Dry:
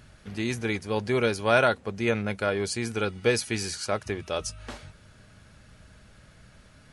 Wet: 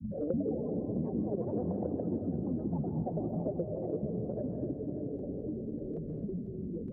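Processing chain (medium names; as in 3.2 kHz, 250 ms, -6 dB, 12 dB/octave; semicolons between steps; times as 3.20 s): pitch shift switched off and on +11.5 st, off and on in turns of 189 ms; level-controlled noise filter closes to 370 Hz; inverse Chebyshev band-stop 1–9.1 kHz, stop band 60 dB; bass shelf 90 Hz +11.5 dB; in parallel at -1.5 dB: level held to a coarse grid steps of 11 dB; on the sum: vowel filter u; granulator, pitch spread up and down by 12 st; delay 592 ms -17 dB; ever faster or slower copies 149 ms, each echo +3 st, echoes 2, each echo -6 dB; on a send at -3.5 dB: reverberation RT60 2.0 s, pre-delay 117 ms; on the sum: three bands compressed up and down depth 100%; trim +7 dB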